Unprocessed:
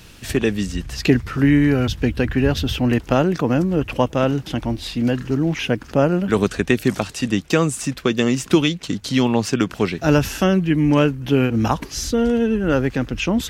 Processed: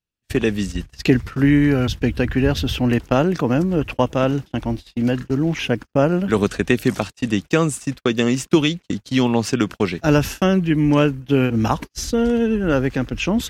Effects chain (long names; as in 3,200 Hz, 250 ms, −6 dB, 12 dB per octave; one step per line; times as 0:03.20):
noise gate −26 dBFS, range −45 dB